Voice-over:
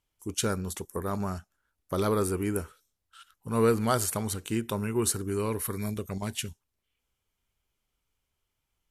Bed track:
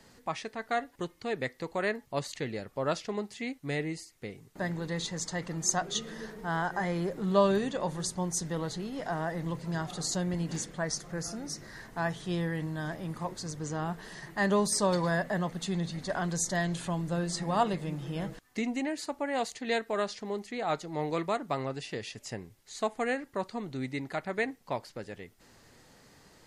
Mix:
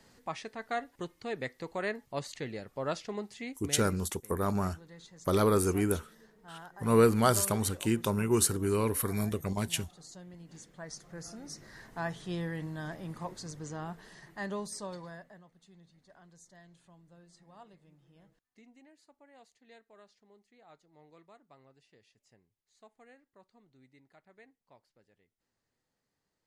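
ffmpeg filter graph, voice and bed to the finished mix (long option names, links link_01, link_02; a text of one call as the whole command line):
ffmpeg -i stem1.wav -i stem2.wav -filter_complex "[0:a]adelay=3350,volume=1dB[link_01];[1:a]volume=10.5dB,afade=type=out:start_time=3.35:duration=0.77:silence=0.188365,afade=type=in:start_time=10.47:duration=1.45:silence=0.199526,afade=type=out:start_time=13.29:duration=2.14:silence=0.0707946[link_02];[link_01][link_02]amix=inputs=2:normalize=0" out.wav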